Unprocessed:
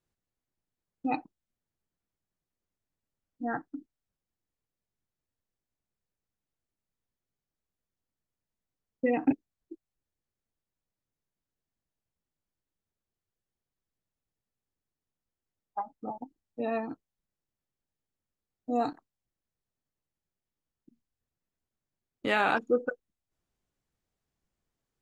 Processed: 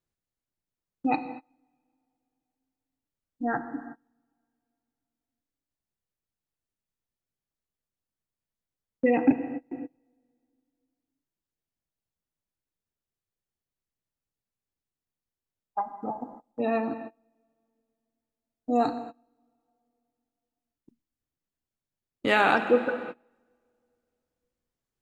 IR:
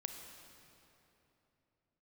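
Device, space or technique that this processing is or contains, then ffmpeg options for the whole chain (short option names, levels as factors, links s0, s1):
keyed gated reverb: -filter_complex "[0:a]asplit=3[s0][s1][s2];[1:a]atrim=start_sample=2205[s3];[s1][s3]afir=irnorm=-1:irlink=0[s4];[s2]apad=whole_len=1103001[s5];[s4][s5]sidechaingate=range=0.0398:threshold=0.00141:ratio=16:detection=peak,volume=2.11[s6];[s0][s6]amix=inputs=2:normalize=0,volume=0.668"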